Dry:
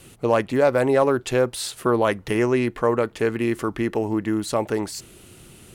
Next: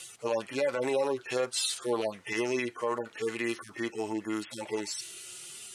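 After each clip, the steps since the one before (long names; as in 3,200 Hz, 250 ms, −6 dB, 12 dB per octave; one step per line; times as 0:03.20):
harmonic-percussive split with one part muted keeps harmonic
meter weighting curve ITU-R 468
brickwall limiter −19.5 dBFS, peak gain reduction 6 dB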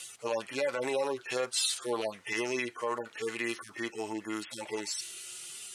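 tilt shelving filter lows −3 dB, about 660 Hz
level −2 dB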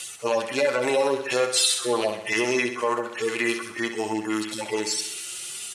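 repeating echo 65 ms, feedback 57%, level −9.5 dB
level +8.5 dB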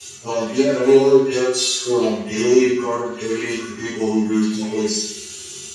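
convolution reverb RT60 0.40 s, pre-delay 3 ms, DRR −14 dB
level −16 dB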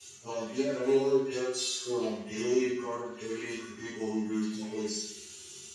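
tuned comb filter 310 Hz, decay 1 s, mix 70%
level −3.5 dB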